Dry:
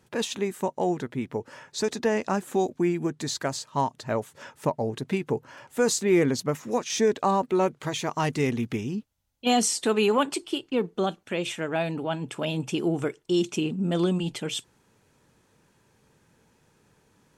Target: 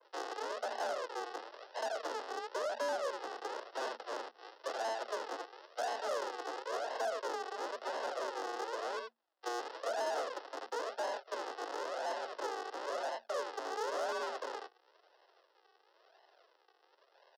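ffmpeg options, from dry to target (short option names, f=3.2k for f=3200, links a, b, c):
-filter_complex "[0:a]asplit=2[a][b];[b]aecho=0:1:77:0.422[c];[a][c]amix=inputs=2:normalize=0,aphaser=in_gain=1:out_gain=1:delay=3.3:decay=0.26:speed=0.14:type=triangular,acompressor=threshold=-24dB:ratio=5,aresample=11025,acrusher=samples=20:mix=1:aa=0.000001:lfo=1:lforange=20:lforate=0.97,aresample=44100,highpass=390,asoftclip=type=tanh:threshold=-32.5dB,afreqshift=230,bandreject=f=2.3k:w=5.4,adynamicequalizer=threshold=0.00224:dfrequency=1900:dqfactor=0.7:tfrequency=1900:tqfactor=0.7:attack=5:release=100:ratio=0.375:range=1.5:mode=cutabove:tftype=highshelf,volume=2dB"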